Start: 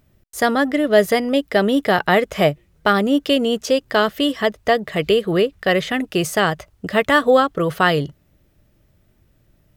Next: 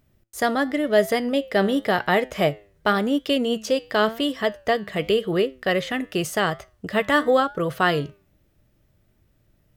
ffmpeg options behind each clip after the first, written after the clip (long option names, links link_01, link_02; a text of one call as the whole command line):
ffmpeg -i in.wav -af "flanger=delay=7.4:depth=3:regen=86:speed=0.91:shape=triangular" out.wav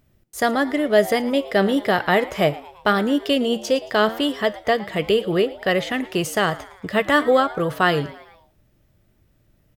ffmpeg -i in.wav -filter_complex "[0:a]asplit=5[link_01][link_02][link_03][link_04][link_05];[link_02]adelay=112,afreqshift=120,volume=-19.5dB[link_06];[link_03]adelay=224,afreqshift=240,volume=-25.2dB[link_07];[link_04]adelay=336,afreqshift=360,volume=-30.9dB[link_08];[link_05]adelay=448,afreqshift=480,volume=-36.5dB[link_09];[link_01][link_06][link_07][link_08][link_09]amix=inputs=5:normalize=0,volume=2dB" out.wav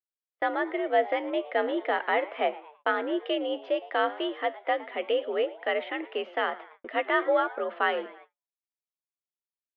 ffmpeg -i in.wav -af "highpass=frequency=260:width_type=q:width=0.5412,highpass=frequency=260:width_type=q:width=1.307,lowpass=frequency=3000:width_type=q:width=0.5176,lowpass=frequency=3000:width_type=q:width=0.7071,lowpass=frequency=3000:width_type=q:width=1.932,afreqshift=61,agate=range=-43dB:threshold=-43dB:ratio=16:detection=peak,volume=-7.5dB" out.wav